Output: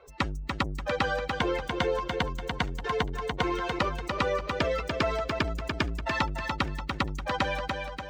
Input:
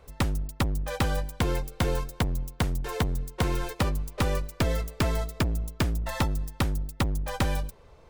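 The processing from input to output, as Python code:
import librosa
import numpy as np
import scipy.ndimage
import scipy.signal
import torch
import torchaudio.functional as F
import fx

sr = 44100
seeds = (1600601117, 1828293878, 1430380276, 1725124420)

y = fx.bin_expand(x, sr, power=2.0)
y = fx.highpass(y, sr, hz=610.0, slope=6)
y = fx.air_absorb(y, sr, metres=170.0)
y = fx.echo_feedback(y, sr, ms=291, feedback_pct=25, wet_db=-9.0)
y = fx.env_flatten(y, sr, amount_pct=50)
y = F.gain(torch.from_numpy(y), 8.0).numpy()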